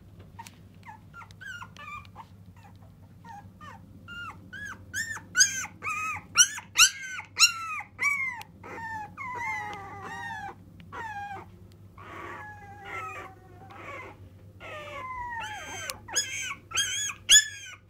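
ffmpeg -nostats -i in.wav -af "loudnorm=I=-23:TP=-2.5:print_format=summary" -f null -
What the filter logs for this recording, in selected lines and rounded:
Input Integrated:    -25.4 LUFS
Input True Peak:      -7.7 dBTP
Input LRA:            18.0 LU
Input Threshold:     -38.1 LUFS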